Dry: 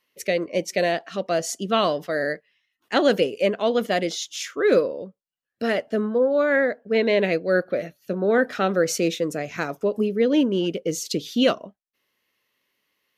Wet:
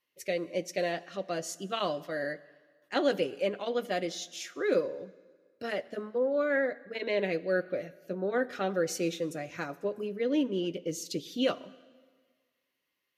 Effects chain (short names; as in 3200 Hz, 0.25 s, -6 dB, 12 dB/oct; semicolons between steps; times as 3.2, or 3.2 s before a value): notch comb 220 Hz; on a send: reverb RT60 1.6 s, pre-delay 6 ms, DRR 18 dB; on the sum: gain -8 dB